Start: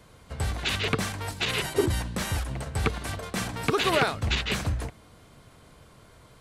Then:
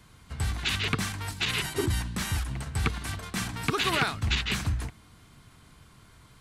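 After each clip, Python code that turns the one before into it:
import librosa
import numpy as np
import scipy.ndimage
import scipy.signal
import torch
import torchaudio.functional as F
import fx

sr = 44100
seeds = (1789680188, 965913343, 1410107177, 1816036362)

y = fx.peak_eq(x, sr, hz=540.0, db=-12.0, octaves=0.92)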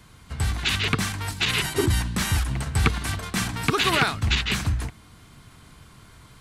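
y = fx.rider(x, sr, range_db=10, speed_s=2.0)
y = y * librosa.db_to_amplitude(5.0)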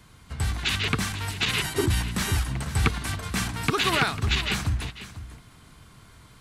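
y = x + 10.0 ** (-13.5 / 20.0) * np.pad(x, (int(497 * sr / 1000.0), 0))[:len(x)]
y = y * librosa.db_to_amplitude(-2.0)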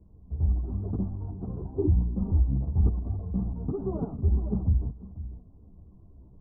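y = fx.chorus_voices(x, sr, voices=6, hz=0.92, base_ms=13, depth_ms=3.0, mix_pct=55)
y = scipy.ndimage.gaussian_filter1d(y, 15.0, mode='constant')
y = y * librosa.db_to_amplitude(3.0)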